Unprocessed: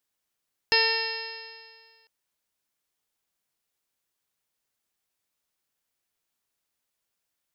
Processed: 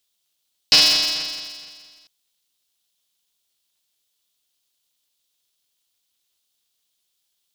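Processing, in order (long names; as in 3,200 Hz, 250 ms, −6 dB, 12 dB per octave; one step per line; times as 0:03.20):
high shelf with overshoot 2,600 Hz +9 dB, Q 3
ring modulator with a square carrier 160 Hz
level −1 dB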